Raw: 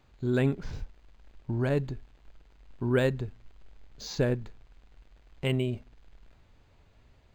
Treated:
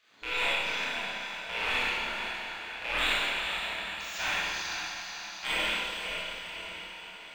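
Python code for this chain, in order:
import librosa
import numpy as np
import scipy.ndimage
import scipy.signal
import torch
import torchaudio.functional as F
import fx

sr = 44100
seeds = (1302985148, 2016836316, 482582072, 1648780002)

p1 = fx.rattle_buzz(x, sr, strikes_db=-33.0, level_db=-29.0)
p2 = fx.small_body(p1, sr, hz=(980.0, 1400.0, 3400.0), ring_ms=45, db=12)
p3 = p2 + fx.echo_diffused(p2, sr, ms=476, feedback_pct=56, wet_db=-7.0, dry=0)
p4 = fx.spec_gate(p3, sr, threshold_db=-20, keep='weak')
p5 = fx.peak_eq(p4, sr, hz=2800.0, db=4.5, octaves=2.2)
y = fx.rev_schroeder(p5, sr, rt60_s=1.8, comb_ms=25, drr_db=-8.0)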